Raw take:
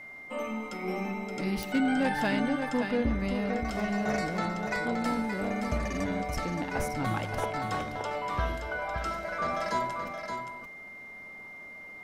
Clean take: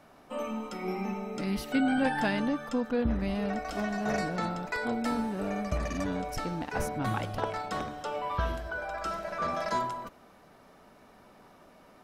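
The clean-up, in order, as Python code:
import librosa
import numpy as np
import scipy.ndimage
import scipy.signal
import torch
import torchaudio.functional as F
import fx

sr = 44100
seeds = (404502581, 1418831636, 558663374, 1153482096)

y = fx.fix_declip(x, sr, threshold_db=-19.5)
y = fx.fix_declick_ar(y, sr, threshold=10.0)
y = fx.notch(y, sr, hz=2100.0, q=30.0)
y = fx.fix_echo_inverse(y, sr, delay_ms=572, level_db=-6.5)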